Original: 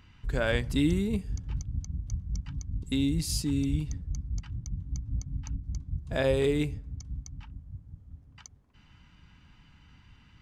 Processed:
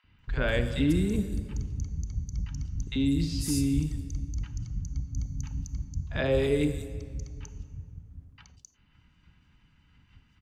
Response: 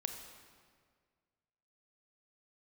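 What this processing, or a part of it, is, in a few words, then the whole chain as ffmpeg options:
keyed gated reverb: -filter_complex "[0:a]asplit=3[link_01][link_02][link_03];[1:a]atrim=start_sample=2205[link_04];[link_02][link_04]afir=irnorm=-1:irlink=0[link_05];[link_03]apad=whole_len=459195[link_06];[link_05][link_06]sidechaingate=range=-33dB:threshold=-52dB:ratio=16:detection=peak,volume=4dB[link_07];[link_01][link_07]amix=inputs=2:normalize=0,asettb=1/sr,asplit=3[link_08][link_09][link_10];[link_08]atrim=end=4.984[link_11];[link_09]atrim=start=4.98:end=5.65,asetpts=PTS-STARTPTS,afade=type=in:duration=0.004:curve=qsin,afade=type=out:start_time=0.666:duration=0.004:curve=qsin,highshelf=frequency=10000:gain=10[link_12];[link_10]atrim=start=5.646[link_13];[link_11][link_12]acrossfade=duration=0.004:curve1=hsin:curve2=qsin[link_14];[link_14][link_13]acrossfade=duration=0.004:curve1=qsin:curve2=hsin,acrossover=split=790|4800[link_15][link_16][link_17];[link_15]adelay=40[link_18];[link_17]adelay=190[link_19];[link_18][link_16][link_19]amix=inputs=3:normalize=0,volume=-6.5dB"

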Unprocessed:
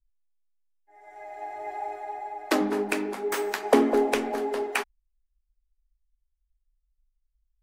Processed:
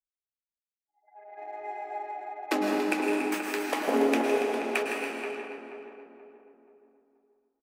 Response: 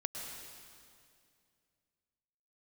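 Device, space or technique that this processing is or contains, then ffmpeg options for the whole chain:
stadium PA: -filter_complex "[0:a]highpass=170,equalizer=frequency=2500:width_type=o:width=0.37:gain=6,aecho=1:1:160.3|282.8:0.316|0.282[link_01];[1:a]atrim=start_sample=2205[link_02];[link_01][link_02]afir=irnorm=-1:irlink=0,asettb=1/sr,asplit=3[link_03][link_04][link_05];[link_03]atrim=end=3.344[link_06];[link_04]atrim=start=3.34:end=3.88,asetpts=PTS-STARTPTS,afade=type=in:duration=0.004:curve=qsin,afade=type=out:start_time=0.536:duration=0.004:curve=qsin,highpass=800[link_07];[link_05]atrim=start=3.876[link_08];[link_06][link_07]acrossfade=duration=0.004:curve1=hsin:curve2=qsin[link_09];[link_09][link_08]acrossfade=duration=0.004:curve1=qsin:curve2=hsin,anlmdn=0.251,equalizer=frequency=330:width_type=o:width=0.77:gain=2.5,asplit=2[link_10][link_11];[link_11]adelay=480,lowpass=frequency=1200:poles=1,volume=-5.5dB,asplit=2[link_12][link_13];[link_13]adelay=480,lowpass=frequency=1200:poles=1,volume=0.44,asplit=2[link_14][link_15];[link_15]adelay=480,lowpass=frequency=1200:poles=1,volume=0.44,asplit=2[link_16][link_17];[link_17]adelay=480,lowpass=frequency=1200:poles=1,volume=0.44,asplit=2[link_18][link_19];[link_19]adelay=480,lowpass=frequency=1200:poles=1,volume=0.44[link_20];[link_10][link_12][link_14][link_16][link_18][link_20]amix=inputs=6:normalize=0,volume=-4dB"

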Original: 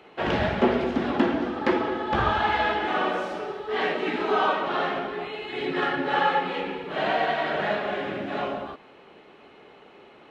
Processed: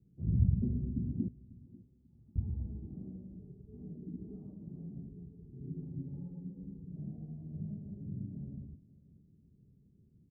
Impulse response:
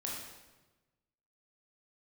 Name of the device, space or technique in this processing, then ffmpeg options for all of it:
the neighbour's flat through the wall: -filter_complex "[0:a]lowpass=frequency=160:width=0.5412,lowpass=frequency=160:width=1.3066,equalizer=frequency=97:width_type=o:width=0.98:gain=4,asettb=1/sr,asplit=3[link_01][link_02][link_03];[link_01]atrim=end=1.284[link_04];[link_02]atrim=start=1.28:end=2.36,asetpts=PTS-STARTPTS,afade=type=in:duration=0.004:curve=qsin,afade=type=out:start_time=1.076:duration=0.004:curve=qsin,aderivative[link_05];[link_03]atrim=start=2.356[link_06];[link_04][link_05]acrossfade=duration=0.004:curve1=hsin:curve2=qsin[link_07];[link_07][link_06]acrossfade=duration=0.004:curve1=qsin:curve2=hsin,aecho=1:1:543|1086:0.0944|0.0302,volume=3dB"

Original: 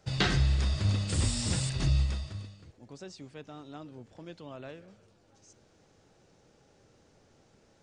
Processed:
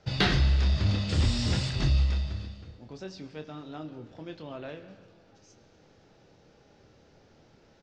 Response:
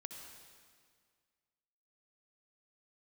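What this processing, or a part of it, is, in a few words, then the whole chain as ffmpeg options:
saturated reverb return: -filter_complex "[0:a]lowpass=frequency=5500:width=0.5412,lowpass=frequency=5500:width=1.3066,bandreject=frequency=1100:width=26,asplit=2[link_01][link_02];[link_02]adelay=26,volume=-8dB[link_03];[link_01][link_03]amix=inputs=2:normalize=0,asplit=2[link_04][link_05];[1:a]atrim=start_sample=2205[link_06];[link_05][link_06]afir=irnorm=-1:irlink=0,asoftclip=type=tanh:threshold=-27dB,volume=-1dB[link_07];[link_04][link_07]amix=inputs=2:normalize=0"

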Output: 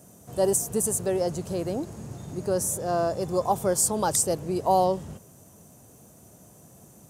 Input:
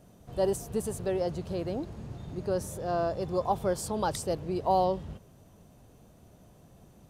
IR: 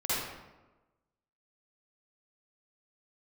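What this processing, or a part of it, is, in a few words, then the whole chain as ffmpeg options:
budget condenser microphone: -af "highpass=95,highshelf=frequency=5300:width_type=q:width=1.5:gain=10,volume=4dB"

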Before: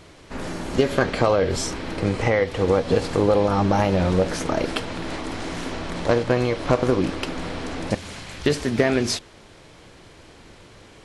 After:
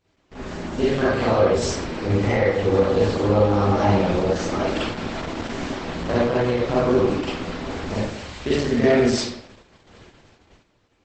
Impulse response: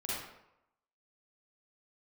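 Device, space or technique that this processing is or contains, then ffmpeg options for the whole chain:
speakerphone in a meeting room: -filter_complex "[1:a]atrim=start_sample=2205[link_01];[0:a][link_01]afir=irnorm=-1:irlink=0,dynaudnorm=framelen=110:gausssize=17:maxgain=7.5dB,agate=range=-15dB:threshold=-39dB:ratio=16:detection=peak,volume=-4.5dB" -ar 48000 -c:a libopus -b:a 12k

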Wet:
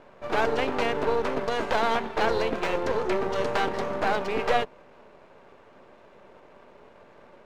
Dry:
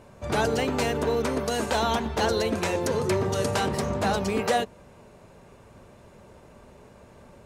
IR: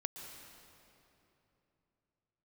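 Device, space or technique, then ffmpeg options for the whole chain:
crystal radio: -af "highpass=320,lowpass=2900,aeval=exprs='if(lt(val(0),0),0.251*val(0),val(0))':channel_layout=same,volume=4.5dB"

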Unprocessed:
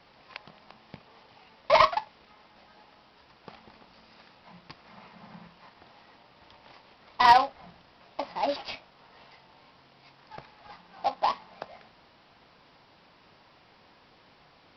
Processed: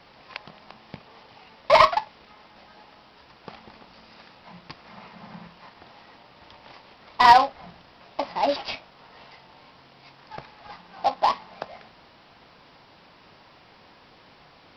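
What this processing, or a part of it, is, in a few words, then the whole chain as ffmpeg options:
parallel distortion: -filter_complex "[0:a]asplit=2[link_01][link_02];[link_02]asoftclip=type=hard:threshold=-23dB,volume=-11.5dB[link_03];[link_01][link_03]amix=inputs=2:normalize=0,volume=3.5dB"

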